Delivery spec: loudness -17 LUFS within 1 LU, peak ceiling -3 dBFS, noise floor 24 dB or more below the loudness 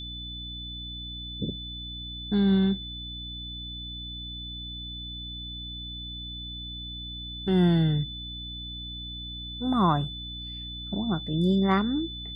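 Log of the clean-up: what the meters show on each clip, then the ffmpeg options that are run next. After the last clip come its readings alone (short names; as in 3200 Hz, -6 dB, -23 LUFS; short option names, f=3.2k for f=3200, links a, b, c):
hum 60 Hz; harmonics up to 300 Hz; hum level -39 dBFS; steady tone 3500 Hz; tone level -37 dBFS; loudness -29.5 LUFS; peak -11.0 dBFS; loudness target -17.0 LUFS
-> -af "bandreject=f=60:t=h:w=6,bandreject=f=120:t=h:w=6,bandreject=f=180:t=h:w=6,bandreject=f=240:t=h:w=6,bandreject=f=300:t=h:w=6"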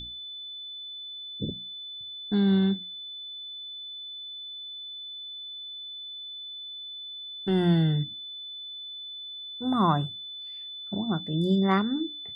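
hum none; steady tone 3500 Hz; tone level -37 dBFS
-> -af "bandreject=f=3.5k:w=30"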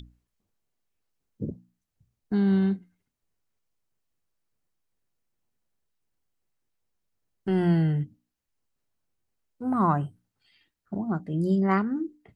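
steady tone none; loudness -26.5 LUFS; peak -11.0 dBFS; loudness target -17.0 LUFS
-> -af "volume=9.5dB,alimiter=limit=-3dB:level=0:latency=1"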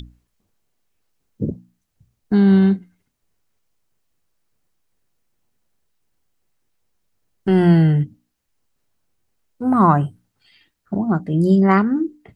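loudness -17.5 LUFS; peak -3.0 dBFS; noise floor -73 dBFS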